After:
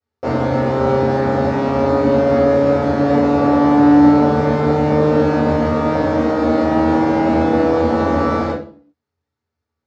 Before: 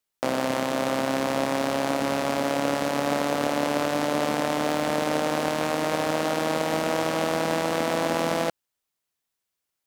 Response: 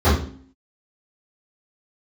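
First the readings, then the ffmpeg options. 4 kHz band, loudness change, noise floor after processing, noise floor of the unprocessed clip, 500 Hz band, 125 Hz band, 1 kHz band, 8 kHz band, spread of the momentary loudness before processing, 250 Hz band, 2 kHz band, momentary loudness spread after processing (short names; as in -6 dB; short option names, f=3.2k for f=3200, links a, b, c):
-4.0 dB, +10.5 dB, -82 dBFS, -83 dBFS, +10.0 dB, +15.5 dB, +8.0 dB, under -10 dB, 1 LU, +14.0 dB, +3.0 dB, 6 LU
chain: -filter_complex "[0:a]lowpass=6.1k[a];[1:a]atrim=start_sample=2205,asetrate=48510,aresample=44100[b];[a][b]afir=irnorm=-1:irlink=0,volume=-16dB"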